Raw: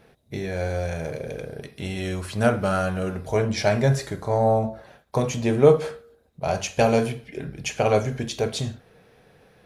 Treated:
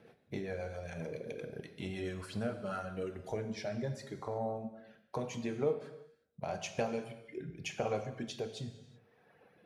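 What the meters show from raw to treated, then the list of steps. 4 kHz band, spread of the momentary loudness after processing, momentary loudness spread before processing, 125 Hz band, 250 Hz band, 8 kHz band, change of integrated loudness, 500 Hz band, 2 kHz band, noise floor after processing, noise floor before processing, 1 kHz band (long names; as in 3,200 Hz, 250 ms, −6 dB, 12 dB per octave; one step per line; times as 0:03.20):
−14.0 dB, 10 LU, 13 LU, −17.5 dB, −14.0 dB, −15.5 dB, −15.5 dB, −15.5 dB, −15.0 dB, −69 dBFS, −59 dBFS, −15.5 dB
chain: reverb reduction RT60 1.6 s
high-pass filter 120 Hz 12 dB per octave
high-shelf EQ 5,000 Hz −9 dB
downward compressor 2.5 to 1, threshold −36 dBFS, peak gain reduction 17 dB
rotating-speaker cabinet horn 7.5 Hz, later 0.8 Hz, at 0:02.24
reverb whose tail is shaped and stops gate 400 ms falling, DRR 7.5 dB
level −1.5 dB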